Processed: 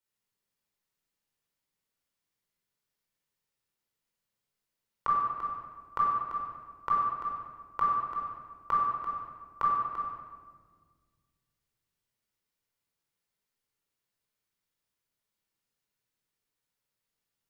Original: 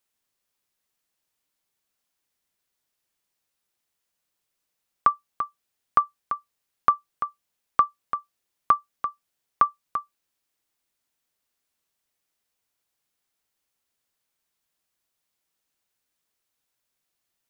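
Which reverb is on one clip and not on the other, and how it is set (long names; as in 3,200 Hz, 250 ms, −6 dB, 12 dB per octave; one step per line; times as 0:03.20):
rectangular room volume 1,900 cubic metres, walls mixed, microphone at 4.6 metres
level −12.5 dB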